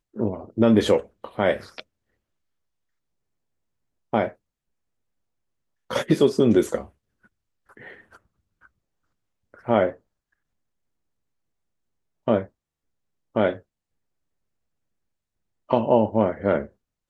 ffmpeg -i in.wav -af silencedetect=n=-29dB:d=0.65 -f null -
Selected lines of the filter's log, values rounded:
silence_start: 1.80
silence_end: 4.14 | silence_duration: 2.34
silence_start: 4.28
silence_end: 5.91 | silence_duration: 1.62
silence_start: 6.82
silence_end: 9.68 | silence_duration: 2.86
silence_start: 9.90
silence_end: 12.28 | silence_duration: 2.38
silence_start: 12.43
silence_end: 13.36 | silence_duration: 0.93
silence_start: 13.57
silence_end: 15.71 | silence_duration: 2.14